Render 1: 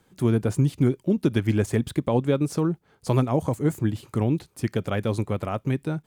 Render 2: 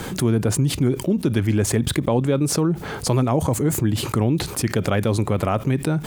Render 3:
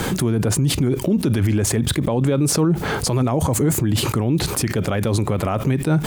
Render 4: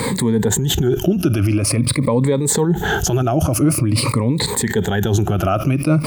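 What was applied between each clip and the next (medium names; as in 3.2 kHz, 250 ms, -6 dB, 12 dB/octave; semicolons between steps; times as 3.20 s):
level flattener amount 70%
peak limiter -18 dBFS, peak gain reduction 11 dB; trim +7.5 dB
drifting ripple filter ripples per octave 0.97, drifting -0.47 Hz, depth 16 dB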